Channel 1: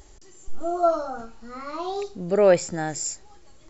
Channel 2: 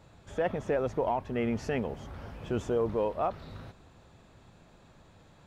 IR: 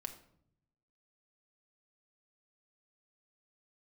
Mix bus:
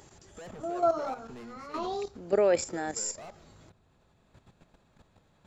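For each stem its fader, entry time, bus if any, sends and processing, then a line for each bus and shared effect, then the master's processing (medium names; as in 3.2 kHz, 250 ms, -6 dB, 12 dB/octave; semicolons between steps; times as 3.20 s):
-0.5 dB, 0.00 s, no send, high-pass 220 Hz 24 dB/octave
-1.0 dB, 0.00 s, send -8.5 dB, hard clipper -34.5 dBFS, distortion -5 dB; auto duck -13 dB, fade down 1.35 s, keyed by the first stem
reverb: on, RT60 0.70 s, pre-delay 5 ms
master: level held to a coarse grid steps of 11 dB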